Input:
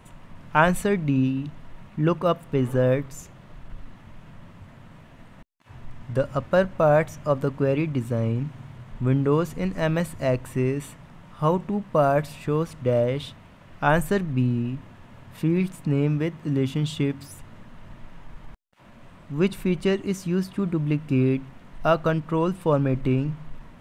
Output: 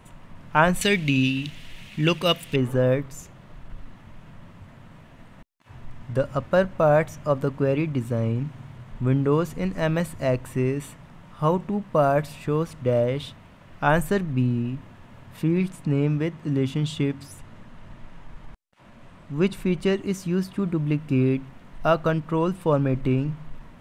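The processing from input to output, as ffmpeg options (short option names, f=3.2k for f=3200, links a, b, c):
-filter_complex "[0:a]asettb=1/sr,asplit=3[a][b][c];[a]atrim=end=0.814[d];[b]atrim=start=0.81:end=2.56,asetpts=PTS-STARTPTS,afade=t=in:d=0.004:c=qsin,afade=t=out:st=1.746:d=0.004:c=qsin,highshelf=f=1.8k:t=q:w=1.5:g=14[e];[c]atrim=start=2.556[f];[d][e]acrossfade=d=0.004:c1=hsin:c2=qsin[g];[g][f]acrossfade=d=0.004:c1=qsin:c2=hsin,asettb=1/sr,asplit=3[h][i][j];[h]atrim=end=15.434[k];[i]atrim=start=15.43:end=19.8,asetpts=PTS-STARTPTS,afade=t=in:d=0.004:c=qsin,afade=t=out:st=4.366:d=0.004:c=qsin,lowpass=12k[l];[j]atrim=start=19.796[m];[k][l]acrossfade=d=0.004:c1=hsin:c2=qsin[n];[n][m]acrossfade=d=0.004:c1=qsin:c2=hsin"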